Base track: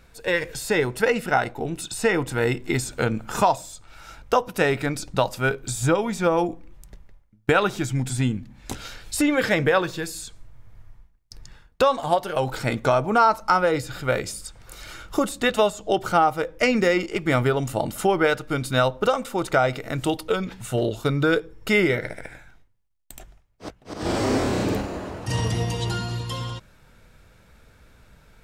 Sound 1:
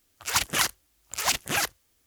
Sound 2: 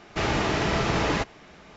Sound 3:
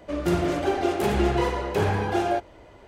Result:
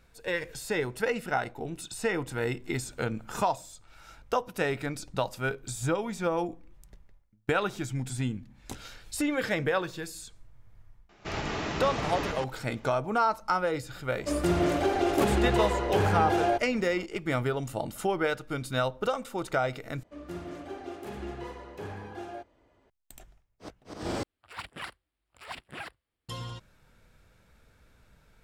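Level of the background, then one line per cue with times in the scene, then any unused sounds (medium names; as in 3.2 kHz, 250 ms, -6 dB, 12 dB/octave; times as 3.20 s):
base track -8 dB
11.09 s: add 2 -9.5 dB + chunks repeated in reverse 123 ms, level -2.5 dB
14.18 s: add 3 -0.5 dB + peak limiter -15.5 dBFS
20.03 s: replace with 3 -17 dB + small resonant body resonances 260/1200/1700 Hz, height 6 dB
24.23 s: replace with 1 -12 dB + boxcar filter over 7 samples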